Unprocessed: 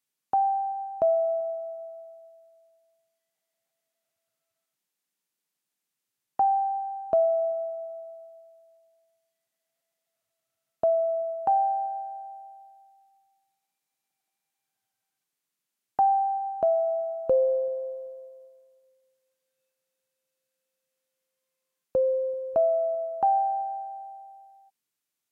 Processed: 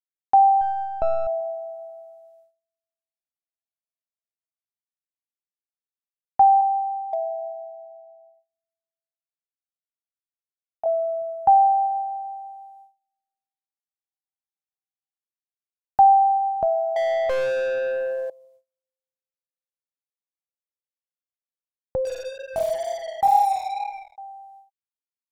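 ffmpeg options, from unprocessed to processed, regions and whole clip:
-filter_complex "[0:a]asettb=1/sr,asplit=3[a][b][c];[a]atrim=end=0.614[d];[b]atrim=start=0.61:end=1.27,asetpts=PTS-STARTPTS,afade=t=in:d=0.004:c=qsin,afade=t=out:st=0.656:d=0.004:c=qsin,aeval=exprs='if(lt(val(0),0),0.447*val(0),val(0))':c=same,aemphasis=mode=reproduction:type=50fm[e];[c]atrim=start=1.266[f];[d][e]acrossfade=d=0.004:c1=hsin:c2=qsin[g];[g][f]acrossfade=d=0.004:c1=qsin:c2=hsin,asettb=1/sr,asplit=3[h][i][j];[h]atrim=end=6.614[k];[i]atrim=start=6.61:end=10.86,asetpts=PTS-STARTPTS,afade=t=in:d=0.004:c=qsin,afade=t=out:st=4.246:d=0.004:c=qsin,bandpass=f=750:t=q:w=7.1,asoftclip=type=hard:threshold=-21dB[l];[j]atrim=start=10.856[m];[k][l]acrossfade=d=0.004:c1=hsin:c2=qsin[n];[n][m]acrossfade=d=0.004:c1=qsin:c2=hsin,asettb=1/sr,asplit=3[o][p][q];[o]atrim=end=16.964[r];[p]atrim=start=16.96:end=18.3,asetpts=PTS-STARTPTS,afade=t=in:d=0.004:c=qsin,afade=t=out:st=1.336:d=0.004:c=qsin,tiltshelf=f=870:g=-6.5,aeval=exprs='clip(val(0),-1,0.0631)':c=same,asplit=2[s][t];[t]highpass=f=720:p=1,volume=34dB,asoftclip=type=tanh:threshold=-16dB[u];[s][u]amix=inputs=2:normalize=0,lowpass=f=1.4k:p=1,volume=-6dB[v];[q]atrim=start=18.296[w];[r][v]acrossfade=d=0.004:c1=hsin:c2=qsin[x];[x][w]acrossfade=d=0.004:c1=qsin:c2=hsin,asettb=1/sr,asplit=3[y][z][aa];[y]atrim=end=22.054[ab];[z]atrim=start=22.05:end=24.18,asetpts=PTS-STARTPTS,afade=t=in:d=0.004:c=qsin,afade=t=out:st=2.126:d=0.004:c=qsin,flanger=delay=19:depth=7.6:speed=2.1,acrusher=bits=5:mix=0:aa=0.5,asplit=2[ac][ad];[ad]adelay=49,volume=-5dB[ae];[ac][ae]amix=inputs=2:normalize=0,atrim=end_sample=93933[af];[aa]atrim=start=24.176[ag];[ab][af]acrossfade=d=0.004:c1=hsin:c2=qsin[ah];[ah][ag]acrossfade=d=0.004:c1=qsin:c2=hsin,asubboost=boost=4.5:cutoff=140,agate=range=-28dB:threshold=-57dB:ratio=16:detection=peak,equalizer=f=820:t=o:w=0.3:g=11"

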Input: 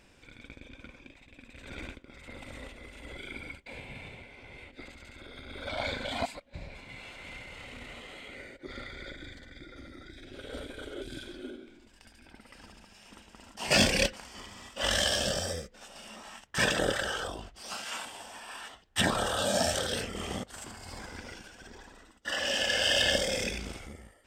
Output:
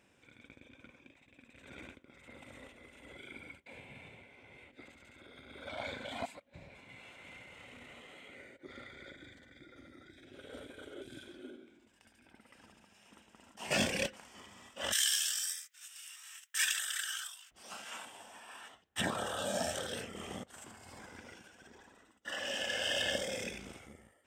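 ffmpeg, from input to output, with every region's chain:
-filter_complex "[0:a]asettb=1/sr,asplit=3[a][b][c];[a]atrim=end=14.924[d];[b]atrim=start=14.92:end=17.51,asetpts=PTS-STARTPTS,afade=t=in:d=0.004:c=qsin,afade=t=out:st=2.586:d=0.004:c=qsin,highpass=f=1.5k:w=0.5412,highpass=f=1.5k:w=1.3066,aemphasis=mode=production:type=75kf[e];[c]atrim=start=17.506[f];[d][e]acrossfade=d=0.004:c1=hsin:c2=qsin[g];[g][f]acrossfade=d=0.004:c1=qsin:c2=hsin,highpass=100,equalizer=f=4.6k:t=o:w=0.43:g=-7.5,volume=-7dB"

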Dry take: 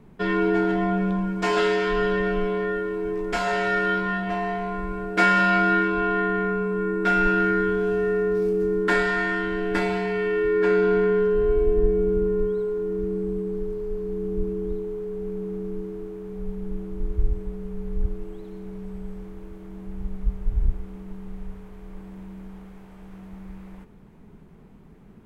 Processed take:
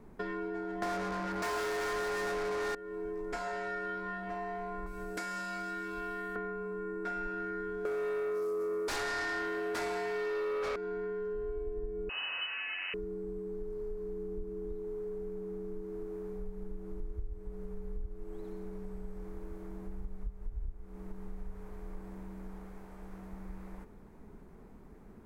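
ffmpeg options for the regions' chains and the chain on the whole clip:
-filter_complex "[0:a]asettb=1/sr,asplit=3[a][b][c];[a]atrim=end=0.824[d];[b]atrim=start=0.82:end=2.75,asetpts=PTS-STARTPTS,afade=t=in:d=0.004:c=qsin,afade=t=out:st=1.926:d=0.004:c=qsin,bandreject=f=50:t=h:w=6,bandreject=f=100:t=h:w=6,bandreject=f=150:t=h:w=6,bandreject=f=200:t=h:w=6,bandreject=f=250:t=h:w=6,bandreject=f=300:t=h:w=6,bandreject=f=350:t=h:w=6,acontrast=71,asplit=2[e][f];[f]highpass=f=720:p=1,volume=32dB,asoftclip=type=tanh:threshold=-6dB[g];[e][g]amix=inputs=2:normalize=0,lowpass=f=5.7k:p=1,volume=-6dB[h];[c]atrim=start=2.746[i];[d][h]acrossfade=d=0.004:c1=hsin:c2=qsin[j];[j][i]acrossfade=d=0.004:c1=qsin:c2=hsin,asettb=1/sr,asplit=3[k][l][m];[k]atrim=end=4.864[n];[l]atrim=start=4.86:end=6.36,asetpts=PTS-STARTPTS,afade=t=in:d=0.004:c=qsin,afade=t=out:st=1.496:d=0.004:c=qsin,bass=f=250:g=4,treble=f=4k:g=11,acrossover=split=1700|6700[o][p][q];[o]acompressor=threshold=-32dB:ratio=4[r];[p]acompressor=threshold=-36dB:ratio=4[s];[q]acompressor=threshold=-44dB:ratio=4[t];[r][s][t]amix=inputs=3:normalize=0[u];[m]atrim=start=6.356[v];[n][u]acrossfade=d=0.004:c1=hsin:c2=qsin[w];[w][v]acrossfade=d=0.004:c1=qsin:c2=hsin,asettb=1/sr,asplit=3[x][y][z];[x]atrim=end=7.854[aa];[y]atrim=start=7.85:end=10.76,asetpts=PTS-STARTPTS,afade=t=in:d=0.004:c=qsin,afade=t=out:st=2.906:d=0.004:c=qsin,highpass=330,aemphasis=mode=production:type=cd,aeval=exprs='0.335*sin(PI/2*3.98*val(0)/0.335)':c=same[ab];[z]atrim=start=10.756[ac];[aa][ab]acrossfade=d=0.004:c1=hsin:c2=qsin[ad];[ad][ac]acrossfade=d=0.004:c1=qsin:c2=hsin,asettb=1/sr,asplit=3[ae][af][ag];[ae]atrim=end=12.094[ah];[af]atrim=start=12.09:end=12.94,asetpts=PTS-STARTPTS,afade=t=in:d=0.004:c=qsin,afade=t=out:st=0.846:d=0.004:c=qsin,lowshelf=f=130:g=7,acrusher=bits=3:mix=0:aa=0.5,lowpass=f=2.6k:t=q:w=0.5098,lowpass=f=2.6k:t=q:w=0.6013,lowpass=f=2.6k:t=q:w=0.9,lowpass=f=2.6k:t=q:w=2.563,afreqshift=-3000[ai];[ag]atrim=start=12.936[aj];[ah][ai]acrossfade=d=0.004:c1=hsin:c2=qsin[ak];[ak][aj]acrossfade=d=0.004:c1=qsin:c2=hsin,equalizer=f=3k:w=1.7:g=-8.5,acompressor=threshold=-34dB:ratio=6,equalizer=f=150:w=1.5:g=-9,volume=-1dB"

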